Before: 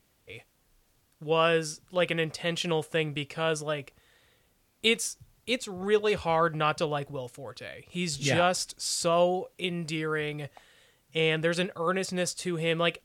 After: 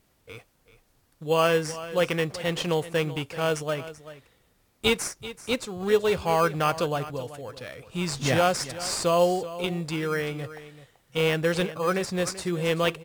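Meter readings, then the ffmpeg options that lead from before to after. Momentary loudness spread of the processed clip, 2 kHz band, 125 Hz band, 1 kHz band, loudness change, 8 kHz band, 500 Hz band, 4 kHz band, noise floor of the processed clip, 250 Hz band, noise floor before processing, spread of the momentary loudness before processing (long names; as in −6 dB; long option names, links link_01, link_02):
13 LU, +1.0 dB, +3.0 dB, +2.5 dB, +2.0 dB, +1.0 dB, +3.0 dB, +0.5 dB, −66 dBFS, +3.0 dB, −69 dBFS, 15 LU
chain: -filter_complex "[0:a]asplit=2[link_01][link_02];[link_02]acrusher=samples=12:mix=1:aa=0.000001,volume=-7.5dB[link_03];[link_01][link_03]amix=inputs=2:normalize=0,aecho=1:1:384:0.178"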